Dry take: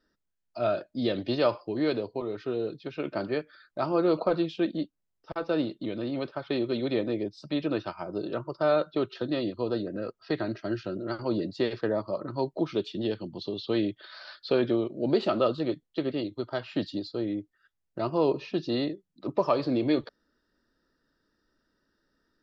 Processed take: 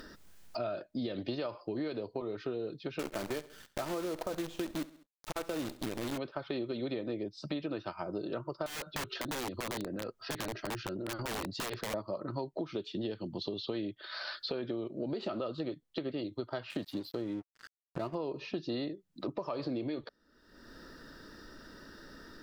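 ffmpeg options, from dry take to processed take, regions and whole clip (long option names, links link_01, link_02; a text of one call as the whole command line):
ffmpeg -i in.wav -filter_complex "[0:a]asettb=1/sr,asplit=3[link_01][link_02][link_03];[link_01]atrim=end=2.994[link_04];[link_02]atrim=start=2.99:end=6.18,asetpts=PTS-STARTPTS,afade=type=in:duration=0.004:curve=qsin,afade=type=out:start_time=3.186:duration=0.004:curve=qsin,acrusher=bits=6:dc=4:mix=0:aa=0.000001,aecho=1:1:67|134|201:0.0944|0.0378|0.0151,atrim=end_sample=140679[link_05];[link_03]atrim=start=6.176[link_06];[link_04][link_05]acrossfade=duration=0.004:curve1=hsin:curve2=qsin[link_07];[link_07][link_06]acrossfade=duration=0.004:curve1=qsin:curve2=hsin,asettb=1/sr,asplit=3[link_08][link_09][link_10];[link_08]atrim=end=8.664[link_11];[link_09]atrim=start=8.66:end=11.94,asetpts=PTS-STARTPTS,afade=type=in:duration=0.004:curve=qsin,afade=type=out:start_time=3.276:duration=0.004:curve=qsin,lowshelf=frequency=71:gain=5.5,aeval=exprs='(mod(15.8*val(0)+1,2)-1)/15.8':channel_layout=same,acompressor=threshold=-36dB:ratio=4:attack=3.2:release=140:knee=1:detection=peak[link_12];[link_10]atrim=start=11.936[link_13];[link_11][link_12]acrossfade=duration=0.004:curve1=hsin:curve2=qsin[link_14];[link_14][link_13]acrossfade=duration=0.004:curve1=qsin:curve2=hsin,asettb=1/sr,asplit=3[link_15][link_16][link_17];[link_15]atrim=end=16.704[link_18];[link_16]atrim=start=16.7:end=18.15,asetpts=PTS-STARTPTS,afade=type=in:duration=0.004:curve=qsin,afade=type=out:start_time=1.446:duration=0.004:curve=qsin,lowpass=4900,acompressor=mode=upward:threshold=-34dB:ratio=2.5:attack=3.2:release=140:knee=2.83:detection=peak,aeval=exprs='sgn(val(0))*max(abs(val(0))-0.00422,0)':channel_layout=same[link_19];[link_17]atrim=start=18.146[link_20];[link_18][link_19]acrossfade=duration=0.004:curve1=hsin:curve2=qsin[link_21];[link_21][link_20]acrossfade=duration=0.004:curve1=qsin:curve2=hsin,acompressor=mode=upward:threshold=-32dB:ratio=2.5,alimiter=limit=-19dB:level=0:latency=1:release=126,acompressor=threshold=-33dB:ratio=6" out.wav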